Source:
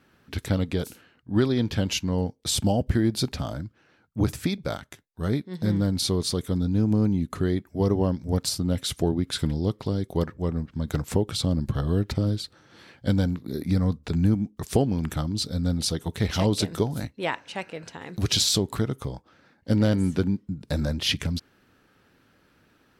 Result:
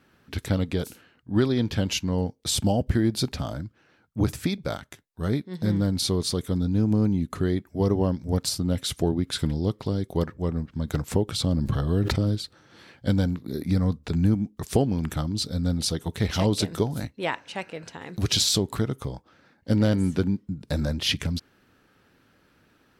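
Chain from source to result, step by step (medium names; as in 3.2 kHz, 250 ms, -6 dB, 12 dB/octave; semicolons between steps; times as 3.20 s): 11.28–12.35 s: decay stretcher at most 28 dB/s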